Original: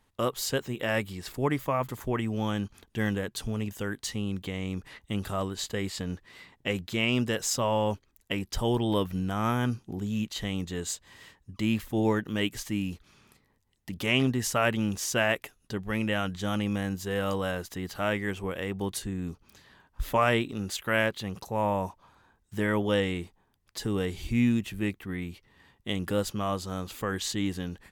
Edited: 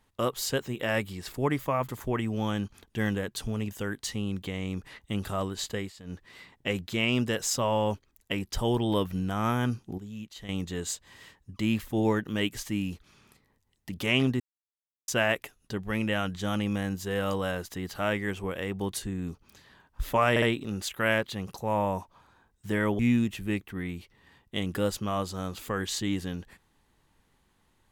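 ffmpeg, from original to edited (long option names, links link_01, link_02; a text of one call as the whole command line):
ffmpeg -i in.wav -filter_complex "[0:a]asplit=10[link_01][link_02][link_03][link_04][link_05][link_06][link_07][link_08][link_09][link_10];[link_01]atrim=end=5.93,asetpts=PTS-STARTPTS,afade=type=out:start_time=5.68:duration=0.25:curve=qsin:silence=0.199526[link_11];[link_02]atrim=start=5.93:end=6.03,asetpts=PTS-STARTPTS,volume=-14dB[link_12];[link_03]atrim=start=6.03:end=9.982,asetpts=PTS-STARTPTS,afade=type=in:duration=0.25:curve=qsin:silence=0.199526[link_13];[link_04]atrim=start=9.978:end=10.492,asetpts=PTS-STARTPTS,volume=-10dB[link_14];[link_05]atrim=start=10.488:end=14.4,asetpts=PTS-STARTPTS,afade=type=out:start_time=3.908:duration=0.004:curve=hsin[link_15];[link_06]atrim=start=14.4:end=15.08,asetpts=PTS-STARTPTS,volume=0[link_16];[link_07]atrim=start=15.08:end=20.362,asetpts=PTS-STARTPTS,afade=type=in:duration=0.004:curve=hsin[link_17];[link_08]atrim=start=20.298:end=20.362[link_18];[link_09]atrim=start=20.298:end=22.872[link_19];[link_10]atrim=start=24.318[link_20];[link_11][link_12][link_13]concat=n=3:v=0:a=1[link_21];[link_21][link_14]acrossfade=duration=0.004:curve1=hsin:curve2=hsin[link_22];[link_15][link_16][link_17]concat=n=3:v=0:a=1[link_23];[link_22][link_23]acrossfade=duration=0.004:curve1=hsin:curve2=hsin[link_24];[link_24][link_18]acrossfade=duration=0.004:curve1=hsin:curve2=hsin[link_25];[link_25][link_19]acrossfade=duration=0.004:curve1=hsin:curve2=hsin[link_26];[link_26][link_20]acrossfade=duration=0.004:curve1=hsin:curve2=hsin" out.wav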